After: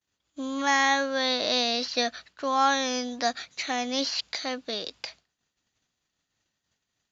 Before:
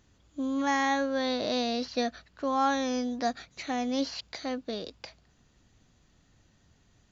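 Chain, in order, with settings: distance through air 76 m; expander -52 dBFS; tilt EQ +3.5 dB/octave; trim +4.5 dB

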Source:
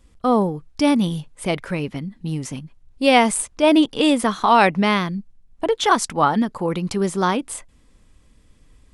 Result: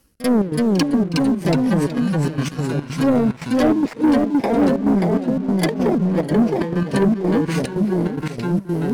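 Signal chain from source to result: bit-reversed sample order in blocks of 32 samples; rotary cabinet horn 1 Hz; low-pass that closes with the level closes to 490 Hz, closed at -18.5 dBFS; high-pass 160 Hz 6 dB/octave; in parallel at -9 dB: hard clipper -22.5 dBFS, distortion -10 dB; on the sum: ever faster or slower copies 318 ms, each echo -1 st, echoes 3; trance gate "xxxx.xxx.x.xx." 145 bpm -12 dB; waveshaping leveller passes 2; treble shelf 5.9 kHz +5 dB; reverse; upward compressor, threshold -18 dBFS; reverse; pre-echo 42 ms -16 dB

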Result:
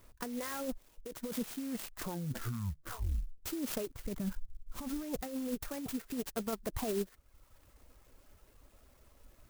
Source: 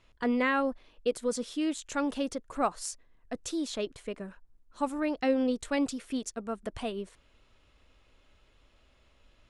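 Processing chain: reverb removal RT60 0.86 s; 3.99–5.22 s: tone controls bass +14 dB, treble +15 dB; compressor with a negative ratio -36 dBFS, ratio -1; distance through air 120 m; 1.39 s: tape stop 1.99 s; sampling jitter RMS 0.094 ms

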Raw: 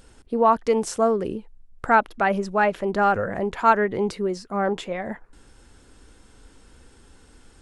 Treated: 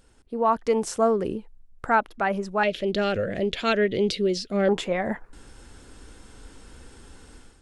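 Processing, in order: 2.63–4.69 s: FFT filter 610 Hz 0 dB, 900 Hz -19 dB, 3.4 kHz +14 dB, 8.1 kHz -1 dB; level rider gain up to 12 dB; trim -7.5 dB

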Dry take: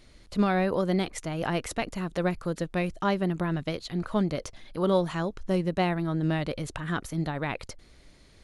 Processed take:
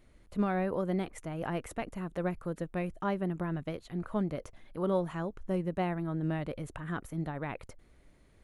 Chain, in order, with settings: peaking EQ 4.7 kHz -13 dB 1.3 oct; trim -5.5 dB

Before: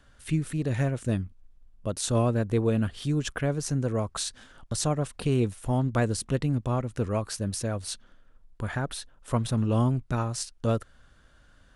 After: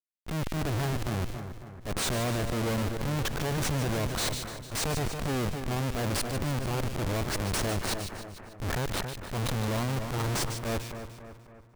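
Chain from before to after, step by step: Schmitt trigger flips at -33 dBFS; two-band feedback delay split 2.1 kHz, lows 276 ms, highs 149 ms, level -10.5 dB; transient shaper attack -9 dB, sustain +5 dB

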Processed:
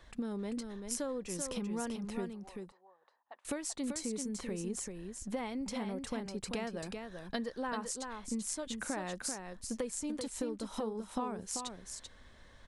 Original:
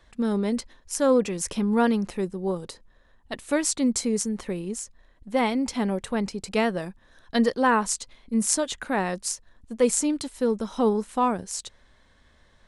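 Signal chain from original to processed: compression 12:1, threshold -35 dBFS, peak gain reduction 20 dB; 2.33–3.45 s: ladder band-pass 1 kHz, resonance 45%; delay 388 ms -6 dB

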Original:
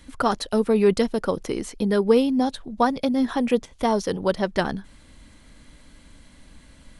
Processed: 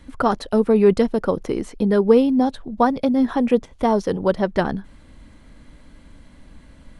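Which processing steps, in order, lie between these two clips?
treble shelf 2.4 kHz -11 dB; trim +4 dB

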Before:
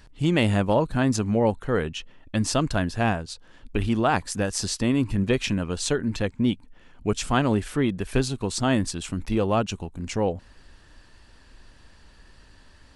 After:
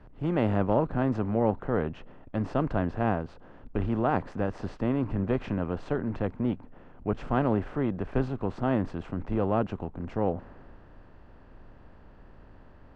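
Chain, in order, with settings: spectral levelling over time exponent 0.6; low-pass 1.3 kHz 12 dB/octave; three bands expanded up and down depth 40%; trim -7 dB

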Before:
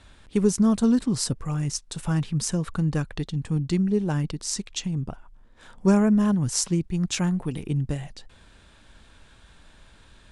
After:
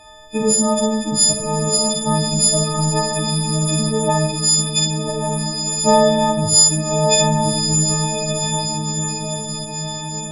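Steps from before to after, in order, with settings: partials quantised in pitch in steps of 6 st; high-order bell 730 Hz +12 dB 1.1 oct; on a send: echo that smears into a reverb 1172 ms, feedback 56%, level -4.5 dB; on the sum: Schroeder reverb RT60 0.56 s, combs from 30 ms, DRR 1 dB

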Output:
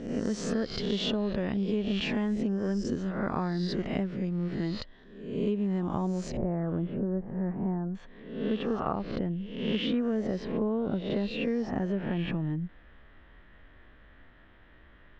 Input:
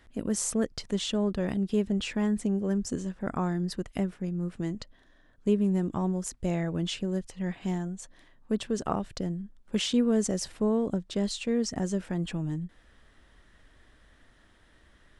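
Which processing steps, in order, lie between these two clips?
reverse spectral sustain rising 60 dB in 0.74 s; low-pass 4.7 kHz 24 dB/octave, from 6.37 s 1.3 kHz, from 7.95 s 3 kHz; compression 5:1, threshold -27 dBFS, peak gain reduction 8 dB; trim +1.5 dB

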